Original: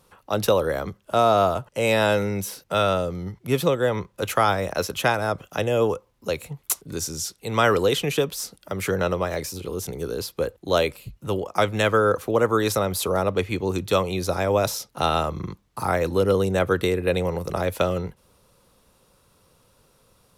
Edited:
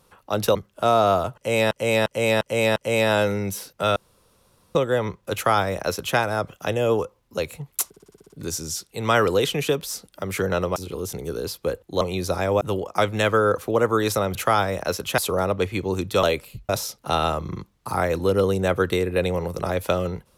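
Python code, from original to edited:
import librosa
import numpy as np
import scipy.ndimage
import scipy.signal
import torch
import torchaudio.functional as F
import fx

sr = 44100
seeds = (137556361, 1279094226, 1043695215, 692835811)

y = fx.edit(x, sr, fx.cut(start_s=0.55, length_s=0.31),
    fx.repeat(start_s=1.67, length_s=0.35, count=5),
    fx.room_tone_fill(start_s=2.87, length_s=0.79),
    fx.duplicate(start_s=4.25, length_s=0.83, to_s=12.95),
    fx.stutter(start_s=6.79, slice_s=0.06, count=8),
    fx.cut(start_s=9.25, length_s=0.25),
    fx.swap(start_s=10.75, length_s=0.46, other_s=14.0, other_length_s=0.6), tone=tone)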